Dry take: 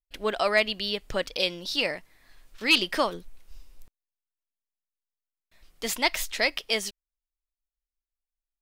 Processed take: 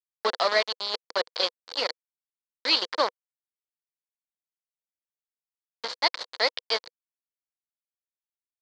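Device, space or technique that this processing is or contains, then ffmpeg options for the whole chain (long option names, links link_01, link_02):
hand-held game console: -af "acrusher=bits=3:mix=0:aa=0.000001,highpass=440,equalizer=frequency=490:width_type=q:width=4:gain=8,equalizer=frequency=1000:width_type=q:width=4:gain=5,equalizer=frequency=2600:width_type=q:width=4:gain=-9,equalizer=frequency=4400:width_type=q:width=4:gain=10,lowpass=frequency=4700:width=0.5412,lowpass=frequency=4700:width=1.3066,volume=-1.5dB"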